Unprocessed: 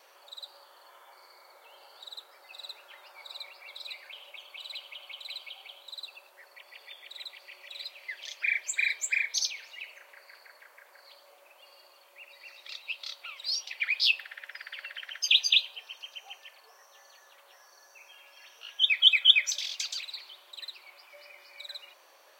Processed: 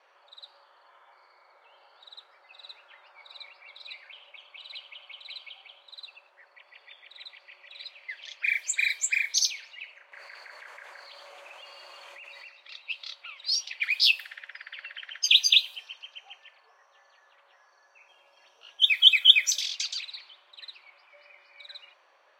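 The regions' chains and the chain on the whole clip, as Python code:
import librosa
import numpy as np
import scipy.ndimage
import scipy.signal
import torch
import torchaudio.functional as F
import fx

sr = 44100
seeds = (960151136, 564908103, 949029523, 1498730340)

y = fx.chain(x, sr, fx.resample_bad(factor=2, down='none', up='zero_stuff'),
    fx.env_flatten(amount_pct=100), at=(10.12, 12.48))
y = fx.chain(y, sr, fx.peak_eq(hz=2000.0, db=-14.0, octaves=1.8),
    fx.leveller(passes=2), at=(18.08, 18.82))
y = fx.env_lowpass(y, sr, base_hz=1800.0, full_db=-25.0)
y = fx.tilt_eq(y, sr, slope=3.0)
y = y * librosa.db_to_amplitude(-2.0)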